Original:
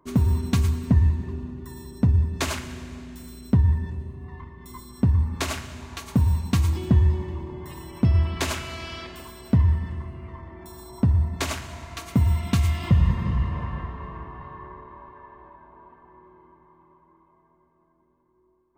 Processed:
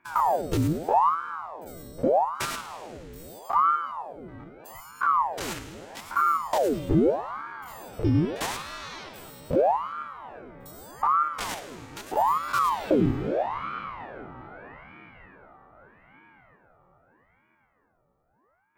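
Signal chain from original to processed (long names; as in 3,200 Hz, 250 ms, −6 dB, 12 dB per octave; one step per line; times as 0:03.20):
spectrum averaged block by block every 50 ms
high-shelf EQ 11,000 Hz +7 dB
ring modulator whose carrier an LFO sweeps 740 Hz, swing 75%, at 0.8 Hz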